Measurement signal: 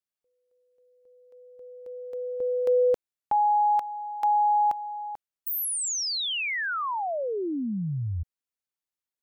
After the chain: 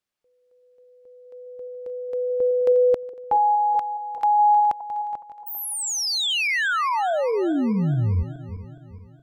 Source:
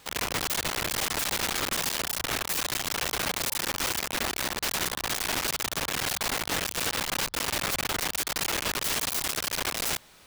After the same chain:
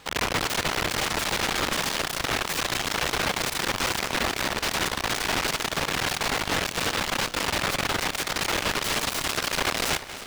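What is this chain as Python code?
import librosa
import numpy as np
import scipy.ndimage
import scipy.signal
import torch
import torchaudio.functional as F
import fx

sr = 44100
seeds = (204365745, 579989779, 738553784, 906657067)

y = fx.reverse_delay_fb(x, sr, ms=209, feedback_pct=64, wet_db=-14.0)
y = fx.high_shelf(y, sr, hz=7400.0, db=-12.0)
y = fx.rider(y, sr, range_db=5, speed_s=2.0)
y = y * 10.0 ** (5.0 / 20.0)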